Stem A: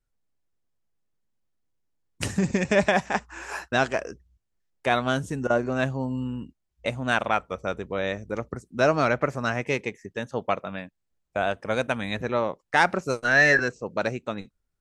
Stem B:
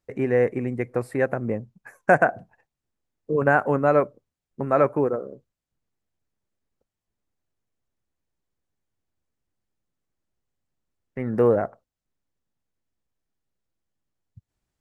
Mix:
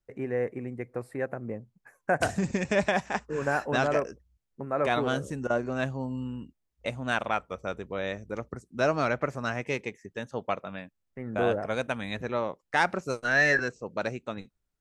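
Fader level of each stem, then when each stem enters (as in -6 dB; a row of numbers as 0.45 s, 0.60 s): -4.5 dB, -9.0 dB; 0.00 s, 0.00 s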